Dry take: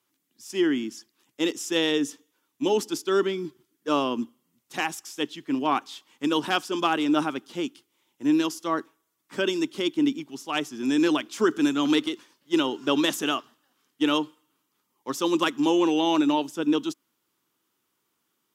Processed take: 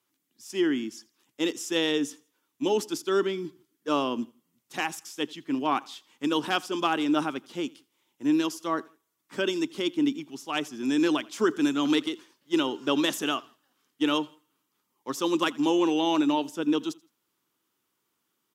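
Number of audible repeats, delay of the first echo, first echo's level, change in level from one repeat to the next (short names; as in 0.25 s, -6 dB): 2, 83 ms, -24.0 dB, -9.5 dB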